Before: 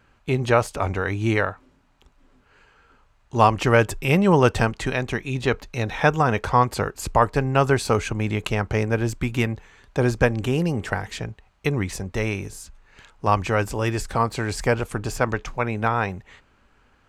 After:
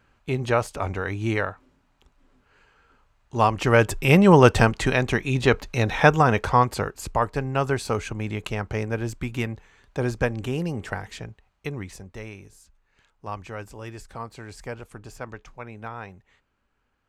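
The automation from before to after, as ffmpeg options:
ffmpeg -i in.wav -af "volume=3dB,afade=type=in:start_time=3.53:duration=0.62:silence=0.473151,afade=type=out:start_time=5.95:duration=1.16:silence=0.398107,afade=type=out:start_time=10.98:duration=1.33:silence=0.354813" out.wav

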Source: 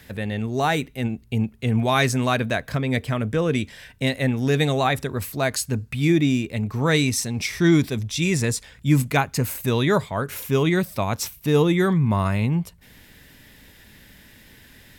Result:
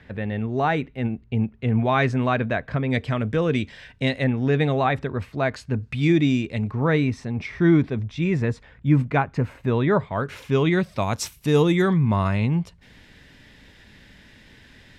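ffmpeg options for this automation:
ffmpeg -i in.wav -af "asetnsamples=nb_out_samples=441:pad=0,asendcmd='2.9 lowpass f 4500;4.24 lowpass f 2400;5.83 lowpass f 4800;6.71 lowpass f 1800;10.11 lowpass f 3900;10.98 lowpass f 9100;11.82 lowpass f 5200',lowpass=2300" out.wav

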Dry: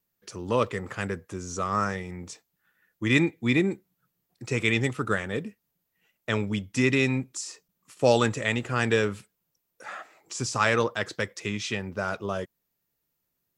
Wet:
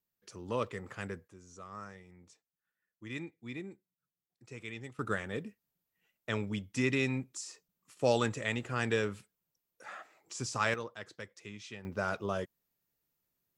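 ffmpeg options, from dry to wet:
ffmpeg -i in.wav -af "asetnsamples=nb_out_samples=441:pad=0,asendcmd='1.28 volume volume -19.5dB;4.99 volume volume -7.5dB;10.74 volume volume -16dB;11.85 volume volume -4dB',volume=-9.5dB" out.wav

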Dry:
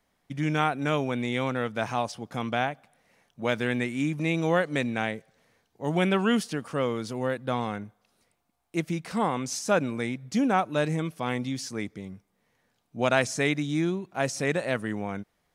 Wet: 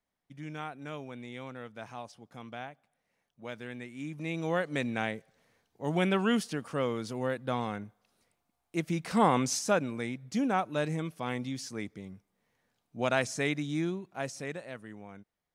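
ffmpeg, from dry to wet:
ffmpeg -i in.wav -af "volume=3.5dB,afade=type=in:start_time=3.9:duration=1.05:silence=0.281838,afade=type=in:start_time=8.82:duration=0.55:silence=0.446684,afade=type=out:start_time=9.37:duration=0.42:silence=0.375837,afade=type=out:start_time=13.82:duration=0.86:silence=0.316228" out.wav

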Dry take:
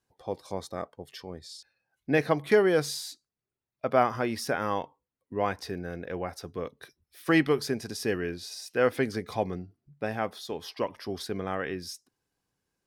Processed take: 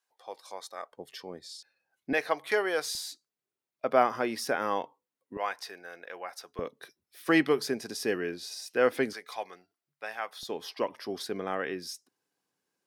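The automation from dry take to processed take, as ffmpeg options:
ffmpeg -i in.wav -af "asetnsamples=nb_out_samples=441:pad=0,asendcmd='0.92 highpass f 230;2.13 highpass f 630;2.95 highpass f 250;5.37 highpass f 810;6.59 highpass f 230;9.13 highpass f 950;10.43 highpass f 230',highpass=840" out.wav

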